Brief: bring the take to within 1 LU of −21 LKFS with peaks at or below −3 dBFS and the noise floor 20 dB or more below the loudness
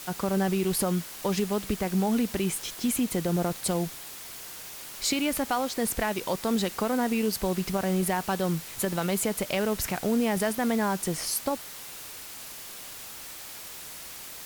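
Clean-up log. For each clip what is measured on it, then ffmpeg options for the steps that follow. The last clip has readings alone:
background noise floor −42 dBFS; target noise floor −49 dBFS; integrated loudness −29.0 LKFS; sample peak −14.0 dBFS; target loudness −21.0 LKFS
→ -af "afftdn=noise_reduction=7:noise_floor=-42"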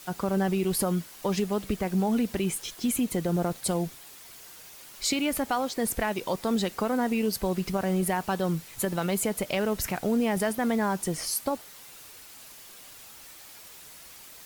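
background noise floor −48 dBFS; integrated loudness −28.0 LKFS; sample peak −14.0 dBFS; target loudness −21.0 LKFS
→ -af "volume=7dB"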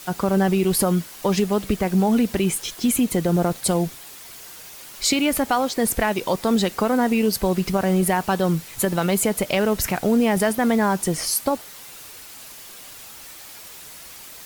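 integrated loudness −21.0 LKFS; sample peak −7.0 dBFS; background noise floor −41 dBFS

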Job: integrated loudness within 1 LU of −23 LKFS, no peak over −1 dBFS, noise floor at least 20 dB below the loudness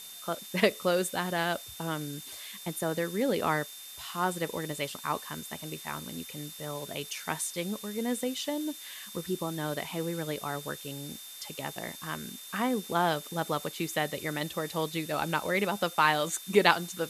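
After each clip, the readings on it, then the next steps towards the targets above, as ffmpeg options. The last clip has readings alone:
interfering tone 3,600 Hz; level of the tone −48 dBFS; background noise floor −46 dBFS; target noise floor −52 dBFS; integrated loudness −32.0 LKFS; sample peak −5.0 dBFS; target loudness −23.0 LKFS
→ -af "bandreject=frequency=3600:width=30"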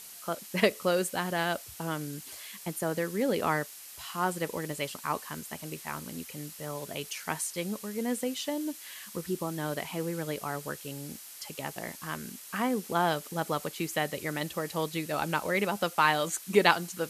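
interfering tone none found; background noise floor −47 dBFS; target noise floor −52 dBFS
→ -af "afftdn=noise_reduction=6:noise_floor=-47"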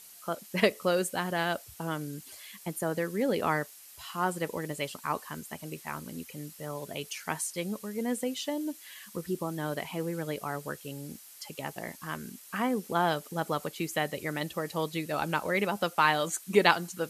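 background noise floor −51 dBFS; target noise floor −52 dBFS
→ -af "afftdn=noise_reduction=6:noise_floor=-51"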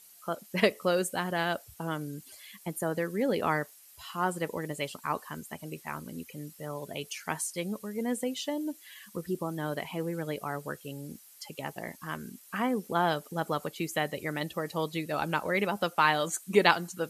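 background noise floor −55 dBFS; integrated loudness −32.0 LKFS; sample peak −5.5 dBFS; target loudness −23.0 LKFS
→ -af "volume=9dB,alimiter=limit=-1dB:level=0:latency=1"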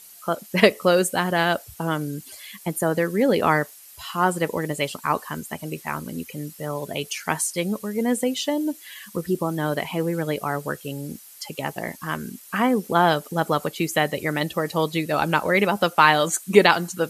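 integrated loudness −23.0 LKFS; sample peak −1.0 dBFS; background noise floor −46 dBFS

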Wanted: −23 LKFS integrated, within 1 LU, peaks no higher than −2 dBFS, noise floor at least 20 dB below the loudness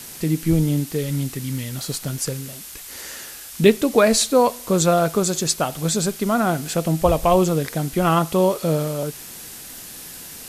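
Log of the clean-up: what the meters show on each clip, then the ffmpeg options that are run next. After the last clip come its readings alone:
background noise floor −38 dBFS; target noise floor −40 dBFS; integrated loudness −20.0 LKFS; sample peak −1.5 dBFS; target loudness −23.0 LKFS
→ -af "afftdn=noise_reduction=6:noise_floor=-38"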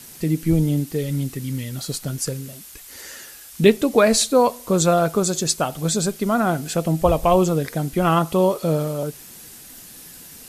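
background noise floor −42 dBFS; integrated loudness −20.5 LKFS; sample peak −1.5 dBFS; target loudness −23.0 LKFS
→ -af "volume=-2.5dB"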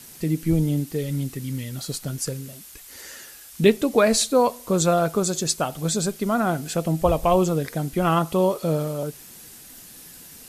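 integrated loudness −23.0 LKFS; sample peak −4.0 dBFS; background noise floor −45 dBFS

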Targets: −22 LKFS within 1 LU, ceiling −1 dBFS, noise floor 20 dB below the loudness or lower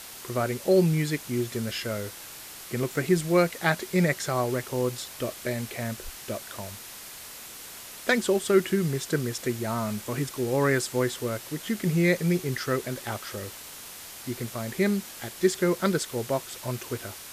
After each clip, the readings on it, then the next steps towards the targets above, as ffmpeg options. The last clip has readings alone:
background noise floor −43 dBFS; target noise floor −48 dBFS; integrated loudness −27.5 LKFS; sample peak −8.5 dBFS; target loudness −22.0 LKFS
→ -af "afftdn=noise_reduction=6:noise_floor=-43"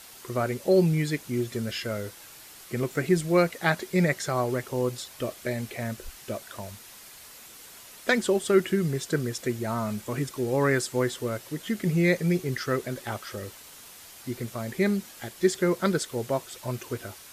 background noise floor −48 dBFS; integrated loudness −27.5 LKFS; sample peak −8.5 dBFS; target loudness −22.0 LKFS
→ -af "volume=5.5dB"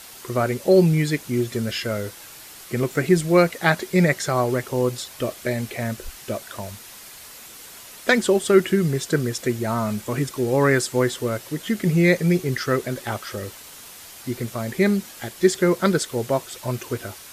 integrated loudness −22.0 LKFS; sample peak −3.0 dBFS; background noise floor −42 dBFS

